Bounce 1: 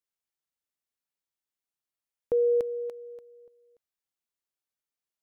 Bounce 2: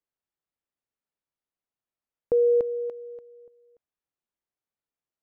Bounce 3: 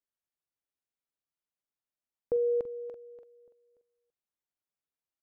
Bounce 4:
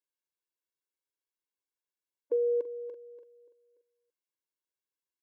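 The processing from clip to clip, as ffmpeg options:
ffmpeg -i in.wav -af "lowpass=frequency=1100:poles=1,volume=4dB" out.wav
ffmpeg -i in.wav -af "aecho=1:1:45|334:0.168|0.158,volume=-6dB" out.wav
ffmpeg -i in.wav -af "afftfilt=real='re*eq(mod(floor(b*sr/1024/290),2),1)':imag='im*eq(mod(floor(b*sr/1024/290),2),1)':win_size=1024:overlap=0.75" out.wav

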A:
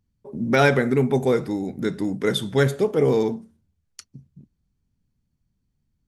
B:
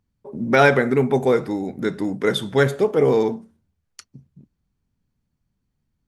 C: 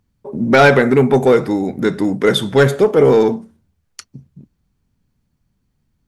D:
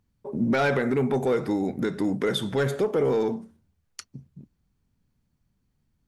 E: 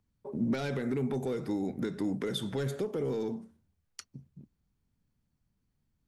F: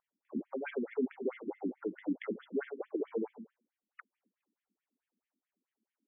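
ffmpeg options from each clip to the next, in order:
ffmpeg -i in.wav -af "equalizer=frequency=1000:width=0.35:gain=6.5,volume=-2dB" out.wav
ffmpeg -i in.wav -af "asoftclip=type=tanh:threshold=-9.5dB,volume=7.5dB" out.wav
ffmpeg -i in.wav -af "alimiter=limit=-11dB:level=0:latency=1:release=166,volume=-5.5dB" out.wav
ffmpeg -i in.wav -filter_complex "[0:a]acrossover=split=380|3000[link_01][link_02][link_03];[link_02]acompressor=threshold=-34dB:ratio=6[link_04];[link_01][link_04][link_03]amix=inputs=3:normalize=0,volume=-5.5dB" out.wav
ffmpeg -i in.wav -af "afftfilt=real='re*between(b*sr/1024,250*pow(2500/250,0.5+0.5*sin(2*PI*4.6*pts/sr))/1.41,250*pow(2500/250,0.5+0.5*sin(2*PI*4.6*pts/sr))*1.41)':imag='im*between(b*sr/1024,250*pow(2500/250,0.5+0.5*sin(2*PI*4.6*pts/sr))/1.41,250*pow(2500/250,0.5+0.5*sin(2*PI*4.6*pts/sr))*1.41)':win_size=1024:overlap=0.75,volume=3dB" out.wav

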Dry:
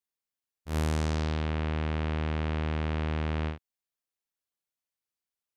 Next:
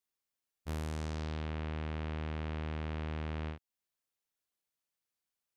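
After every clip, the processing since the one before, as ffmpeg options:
ffmpeg -i in.wav -af "alimiter=level_in=6.5dB:limit=-24dB:level=0:latency=1:release=378,volume=-6.5dB,volume=1dB" out.wav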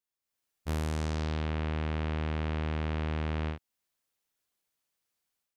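ffmpeg -i in.wav -af "dynaudnorm=framelen=200:gausssize=3:maxgain=10dB,volume=-4dB" out.wav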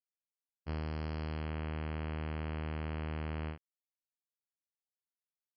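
ffmpeg -i in.wav -af "aresample=11025,aeval=exprs='sgn(val(0))*max(abs(val(0))-0.00224,0)':channel_layout=same,aresample=44100,asuperstop=centerf=3700:order=8:qfactor=4.3,volume=-5.5dB" out.wav

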